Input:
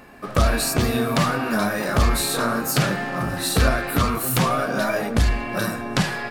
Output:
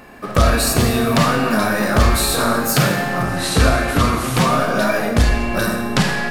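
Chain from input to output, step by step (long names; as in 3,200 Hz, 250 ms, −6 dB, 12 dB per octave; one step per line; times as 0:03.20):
0:03.25–0:04.38: variable-slope delta modulation 64 kbit/s
four-comb reverb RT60 1.1 s, combs from 30 ms, DRR 5.5 dB
level +4 dB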